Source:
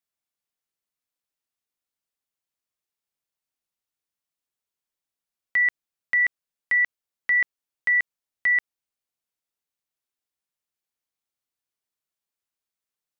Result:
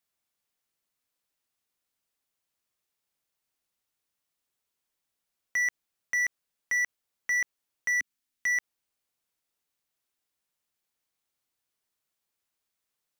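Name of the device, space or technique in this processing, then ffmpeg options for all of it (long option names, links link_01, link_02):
limiter into clipper: -filter_complex "[0:a]asplit=3[link_01][link_02][link_03];[link_01]afade=type=out:start_time=7.91:duration=0.02[link_04];[link_02]equalizer=frequency=125:width_type=o:width=1:gain=-8,equalizer=frequency=250:width_type=o:width=1:gain=7,equalizer=frequency=500:width_type=o:width=1:gain=-11,equalizer=frequency=1000:width_type=o:width=1:gain=-4,afade=type=in:start_time=7.91:duration=0.02,afade=type=out:start_time=8.48:duration=0.02[link_05];[link_03]afade=type=in:start_time=8.48:duration=0.02[link_06];[link_04][link_05][link_06]amix=inputs=3:normalize=0,alimiter=limit=-24dB:level=0:latency=1,asoftclip=type=hard:threshold=-29.5dB,volume=5dB"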